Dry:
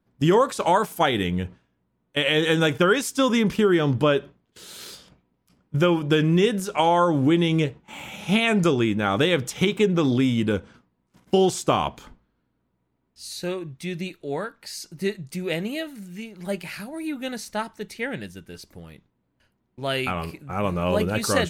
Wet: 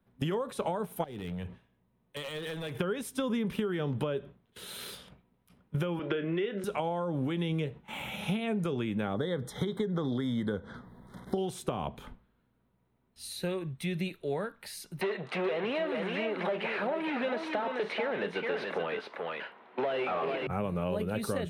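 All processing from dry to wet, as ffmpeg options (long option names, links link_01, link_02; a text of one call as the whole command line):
ffmpeg -i in.wav -filter_complex "[0:a]asettb=1/sr,asplit=3[link_01][link_02][link_03];[link_01]atrim=end=1.044[link_04];[link_02]atrim=start=1.04:end=2.78,asetpts=PTS-STARTPTS,afade=type=in:duration=0.004:curve=qsin,afade=type=out:start_time=1.736:duration=0.004:curve=qsin,bandreject=frequency=1400:width=8.6,acompressor=threshold=-32dB:ratio=8:attack=3.2:release=140:knee=1:detection=peak,aeval=exprs='0.0282*(abs(mod(val(0)/0.0282+3,4)-2)-1)':channel_layout=same[link_05];[link_03]atrim=start=2.776[link_06];[link_04][link_05]acrossfade=duration=0.004:curve1=hsin:curve2=qsin[link_07];[link_07][link_06]acrossfade=duration=0.004:curve1=qsin:curve2=hsin,asettb=1/sr,asplit=3[link_08][link_09][link_10];[link_08]atrim=end=5.994[link_11];[link_09]atrim=start=5.99:end=6.64,asetpts=PTS-STARTPTS,afade=type=in:duration=0.004:curve=qsin,afade=type=out:start_time=0.646:duration=0.004:curve=qsin,highpass=300,equalizer=frequency=360:width_type=q:width=4:gain=10,equalizer=frequency=610:width_type=q:width=4:gain=7,equalizer=frequency=1400:width_type=q:width=4:gain=8,equalizer=frequency=2000:width_type=q:width=4:gain=9,equalizer=frequency=2900:width_type=q:width=4:gain=4,lowpass=frequency=4500:width=0.5412,lowpass=frequency=4500:width=1.3066,asplit=2[link_12][link_13];[link_13]adelay=30,volume=-11.5dB[link_14];[link_12][link_14]amix=inputs=2:normalize=0,atrim=end_sample=28665[link_15];[link_10]atrim=start=6.636[link_16];[link_11][link_15]acrossfade=duration=0.004:curve1=hsin:curve2=qsin[link_17];[link_17][link_16]acrossfade=duration=0.004:curve1=qsin:curve2=hsin,asettb=1/sr,asplit=3[link_18][link_19][link_20];[link_18]atrim=end=9.144[link_21];[link_19]atrim=start=9.14:end=11.38,asetpts=PTS-STARTPTS,afade=type=in:duration=0.004:curve=qsin,afade=type=out:start_time=2.236:duration=0.004:curve=qsin,highshelf=frequency=7200:gain=-9.5,acompressor=mode=upward:threshold=-33dB:ratio=2.5:attack=3.2:release=140:knee=2.83:detection=peak,asuperstop=centerf=2600:order=8:qfactor=2.2[link_22];[link_20]atrim=start=11.376[link_23];[link_21][link_22]acrossfade=duration=0.004:curve1=hsin:curve2=qsin[link_24];[link_24][link_23]acrossfade=duration=0.004:curve1=qsin:curve2=hsin,asettb=1/sr,asplit=3[link_25][link_26][link_27];[link_25]atrim=end=15.014[link_28];[link_26]atrim=start=15.01:end=20.47,asetpts=PTS-STARTPTS,afade=type=in:duration=0.004:curve=qsin,afade=type=out:start_time=5.456:duration=0.004:curve=qsin,asplit=2[link_29][link_30];[link_30]highpass=frequency=720:poles=1,volume=36dB,asoftclip=type=tanh:threshold=-10.5dB[link_31];[link_29][link_31]amix=inputs=2:normalize=0,lowpass=frequency=2200:poles=1,volume=-6dB,highpass=480,lowpass=3200,aecho=1:1:432:0.422,atrim=end_sample=240786[link_32];[link_27]atrim=start=20.466[link_33];[link_28][link_32]acrossfade=duration=0.004:curve1=hsin:curve2=qsin[link_34];[link_34][link_33]acrossfade=duration=0.004:curve1=qsin:curve2=hsin,acrossover=split=150|620[link_35][link_36][link_37];[link_35]acompressor=threshold=-38dB:ratio=4[link_38];[link_36]acompressor=threshold=-24dB:ratio=4[link_39];[link_37]acompressor=threshold=-36dB:ratio=4[link_40];[link_38][link_39][link_40]amix=inputs=3:normalize=0,superequalizer=6b=0.562:14b=0.398:15b=0.355,acompressor=threshold=-28dB:ratio=6" out.wav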